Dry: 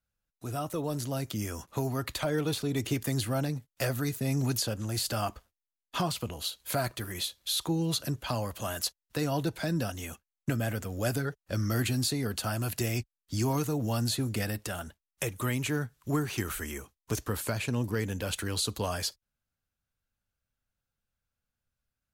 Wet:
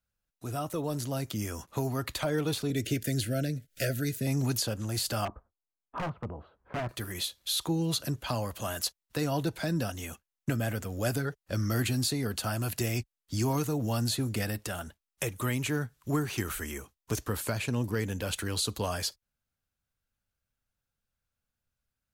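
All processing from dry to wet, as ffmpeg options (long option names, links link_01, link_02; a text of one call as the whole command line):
ffmpeg -i in.wav -filter_complex "[0:a]asettb=1/sr,asplit=3[link_01][link_02][link_03];[link_01]atrim=end=2.704[link_04];[link_02]atrim=start=2.7:end=4.27,asetpts=PTS-STARTPTS,afade=type=in:duration=0.004:curve=qsin,afade=type=out:start_time=1.566:duration=0.004:curve=qsin,asuperstop=centerf=970:order=12:qfactor=1.4,acompressor=mode=upward:threshold=-34dB:ratio=2.5:attack=3.2:release=140:knee=2.83:detection=peak[link_05];[link_03]atrim=start=4.266[link_06];[link_04][link_05]acrossfade=duration=0.004:curve1=hsin:curve2=qsin[link_07];[link_07][link_06]acrossfade=duration=0.004:curve1=qsin:curve2=hsin,asettb=1/sr,asplit=3[link_08][link_09][link_10];[link_08]atrim=end=5.254[link_11];[link_09]atrim=start=5.25:end=6.89,asetpts=PTS-STARTPTS,afade=type=in:duration=0.004:curve=qsin,afade=type=out:start_time=1.636:duration=0.004:curve=qsin,lowpass=frequency=1300:width=0.5412,lowpass=frequency=1300:width=1.3066,aeval=exprs='0.0422*(abs(mod(val(0)/0.0422+3,4)-2)-1)':channel_layout=same[link_12];[link_10]atrim=start=6.886[link_13];[link_11][link_12]acrossfade=duration=0.004:curve1=hsin:curve2=qsin[link_14];[link_14][link_13]acrossfade=duration=0.004:curve1=qsin:curve2=hsin" out.wav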